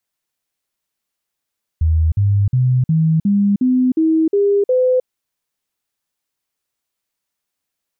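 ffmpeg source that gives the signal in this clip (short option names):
-f lavfi -i "aevalsrc='0.282*clip(min(mod(t,0.36),0.31-mod(t,0.36))/0.005,0,1)*sin(2*PI*80*pow(2,floor(t/0.36)/3)*mod(t,0.36))':d=3.24:s=44100"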